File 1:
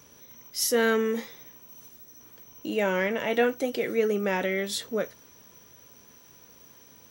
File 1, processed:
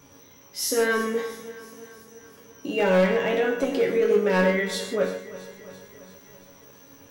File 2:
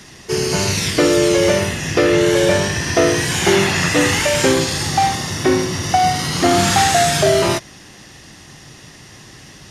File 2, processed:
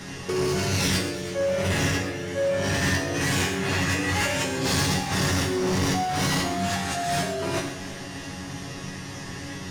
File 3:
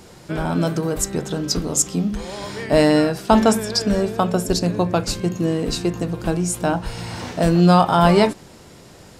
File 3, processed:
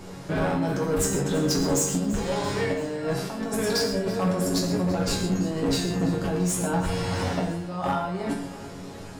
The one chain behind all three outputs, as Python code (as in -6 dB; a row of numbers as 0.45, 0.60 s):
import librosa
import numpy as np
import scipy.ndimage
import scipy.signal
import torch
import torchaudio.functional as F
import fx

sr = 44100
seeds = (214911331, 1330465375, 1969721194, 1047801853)

y = fx.high_shelf(x, sr, hz=2500.0, db=-7.0)
y = fx.over_compress(y, sr, threshold_db=-24.0, ratio=-1.0)
y = fx.resonator_bank(y, sr, root=42, chord='fifth', decay_s=0.22)
y = np.clip(y, -10.0 ** (-30.5 / 20.0), 10.0 ** (-30.5 / 20.0))
y = fx.echo_feedback(y, sr, ms=336, feedback_pct=60, wet_db=-17)
y = fx.rev_gated(y, sr, seeds[0], gate_ms=160, shape='flat', drr_db=5.0)
y = y * 10.0 ** (-26 / 20.0) / np.sqrt(np.mean(np.square(y)))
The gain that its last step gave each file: +14.0, +9.0, +9.0 dB